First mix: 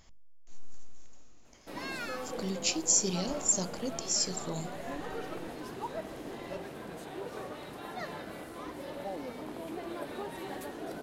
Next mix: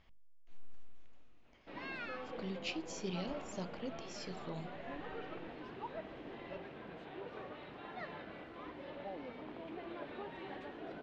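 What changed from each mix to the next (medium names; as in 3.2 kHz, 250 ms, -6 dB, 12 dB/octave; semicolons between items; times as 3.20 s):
master: add four-pole ladder low-pass 3.7 kHz, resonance 30%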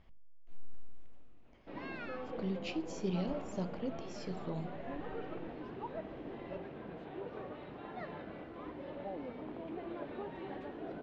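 speech: send +6.5 dB; master: add tilt shelf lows +5 dB, about 1.1 kHz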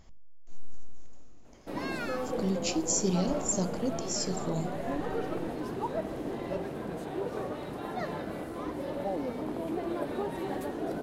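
background +3.0 dB; master: remove four-pole ladder low-pass 3.7 kHz, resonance 30%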